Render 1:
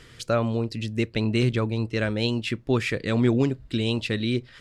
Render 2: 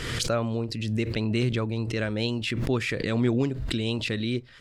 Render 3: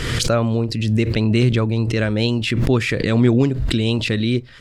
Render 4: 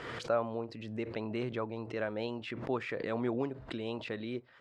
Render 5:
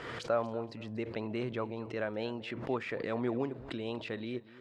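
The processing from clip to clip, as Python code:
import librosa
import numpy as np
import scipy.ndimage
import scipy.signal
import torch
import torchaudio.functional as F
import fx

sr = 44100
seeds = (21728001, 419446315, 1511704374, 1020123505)

y1 = fx.pre_swell(x, sr, db_per_s=33.0)
y1 = F.gain(torch.from_numpy(y1), -3.5).numpy()
y2 = fx.low_shelf(y1, sr, hz=240.0, db=4.0)
y2 = F.gain(torch.from_numpy(y2), 7.0).numpy()
y3 = fx.bandpass_q(y2, sr, hz=820.0, q=1.3)
y3 = F.gain(torch.from_numpy(y3), -7.5).numpy()
y4 = fx.echo_feedback(y3, sr, ms=237, feedback_pct=28, wet_db=-18)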